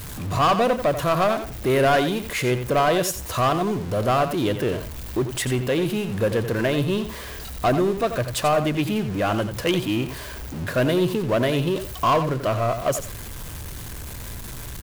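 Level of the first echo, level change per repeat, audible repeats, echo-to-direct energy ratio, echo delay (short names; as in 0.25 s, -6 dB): -10.0 dB, -15.0 dB, 2, -10.0 dB, 88 ms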